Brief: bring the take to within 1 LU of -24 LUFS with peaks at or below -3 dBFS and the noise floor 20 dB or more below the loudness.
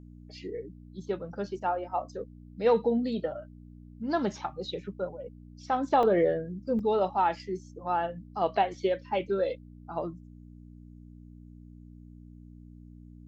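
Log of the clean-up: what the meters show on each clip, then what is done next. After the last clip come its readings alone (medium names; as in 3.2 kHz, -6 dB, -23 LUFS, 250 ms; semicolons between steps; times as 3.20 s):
dropouts 2; longest dropout 2.7 ms; hum 60 Hz; highest harmonic 300 Hz; hum level -47 dBFS; loudness -30.0 LUFS; peak level -12.5 dBFS; loudness target -24.0 LUFS
-> interpolate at 6.03/6.79 s, 2.7 ms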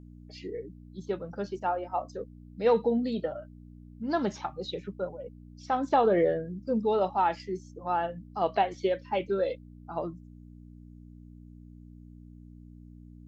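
dropouts 0; hum 60 Hz; highest harmonic 300 Hz; hum level -47 dBFS
-> de-hum 60 Hz, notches 5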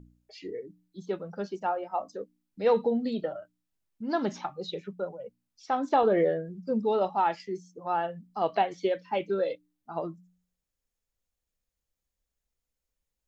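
hum not found; loudness -30.0 LUFS; peak level -12.5 dBFS; loudness target -24.0 LUFS
-> trim +6 dB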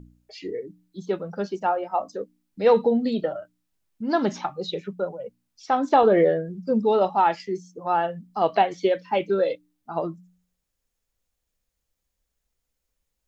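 loudness -24.0 LUFS; peak level -6.5 dBFS; noise floor -80 dBFS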